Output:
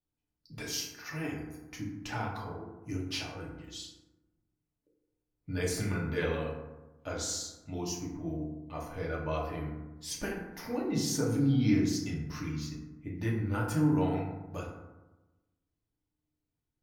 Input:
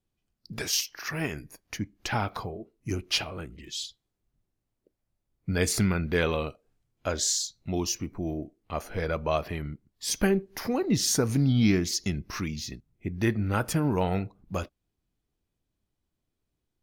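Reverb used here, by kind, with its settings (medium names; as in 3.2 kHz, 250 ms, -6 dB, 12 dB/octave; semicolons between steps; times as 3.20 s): FDN reverb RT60 1.1 s, low-frequency decay 1.2×, high-frequency decay 0.4×, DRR -4 dB; trim -12 dB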